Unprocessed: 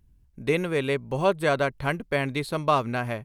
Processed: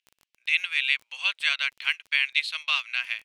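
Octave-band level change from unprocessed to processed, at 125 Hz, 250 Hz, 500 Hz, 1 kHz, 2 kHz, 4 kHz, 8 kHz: under -40 dB, under -40 dB, under -30 dB, -13.5 dB, +6.5 dB, +11.0 dB, -0.5 dB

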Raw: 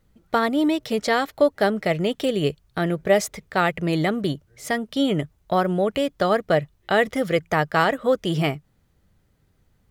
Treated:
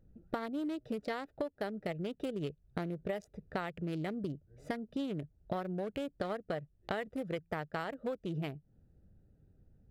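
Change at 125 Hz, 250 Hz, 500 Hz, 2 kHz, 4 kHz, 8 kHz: -14.0 dB, -14.5 dB, -17.5 dB, -19.0 dB, -20.0 dB, under -25 dB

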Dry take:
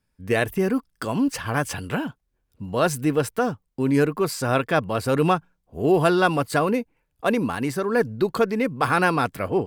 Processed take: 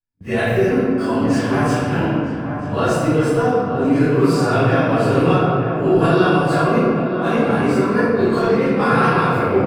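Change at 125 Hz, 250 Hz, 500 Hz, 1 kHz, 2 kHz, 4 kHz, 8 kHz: +8.5 dB, +7.5 dB, +6.0 dB, +5.5 dB, +4.0 dB, +3.0 dB, -1.5 dB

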